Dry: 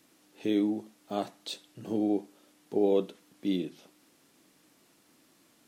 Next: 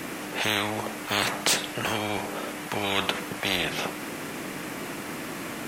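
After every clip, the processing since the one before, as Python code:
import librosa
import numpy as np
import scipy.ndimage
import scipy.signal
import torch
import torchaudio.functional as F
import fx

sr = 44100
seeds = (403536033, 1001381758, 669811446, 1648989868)

y = fx.high_shelf_res(x, sr, hz=3000.0, db=-7.0, q=1.5)
y = fx.spectral_comp(y, sr, ratio=10.0)
y = y * 10.0 ** (6.5 / 20.0)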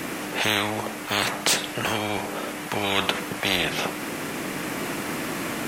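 y = fx.rider(x, sr, range_db=3, speed_s=2.0)
y = y * 10.0 ** (2.5 / 20.0)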